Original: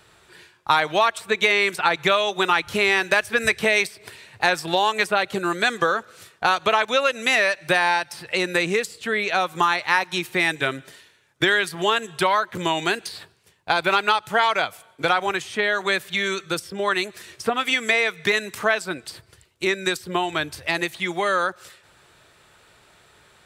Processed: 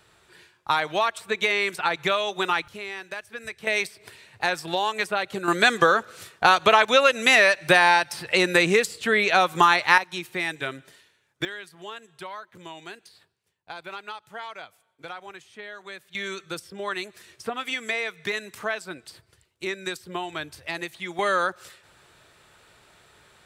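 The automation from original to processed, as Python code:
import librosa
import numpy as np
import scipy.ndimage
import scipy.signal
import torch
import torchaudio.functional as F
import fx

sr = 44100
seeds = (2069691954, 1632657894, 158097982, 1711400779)

y = fx.gain(x, sr, db=fx.steps((0.0, -4.5), (2.68, -16.0), (3.67, -5.0), (5.48, 2.5), (9.98, -7.0), (11.45, -18.0), (16.15, -8.0), (21.19, -1.5)))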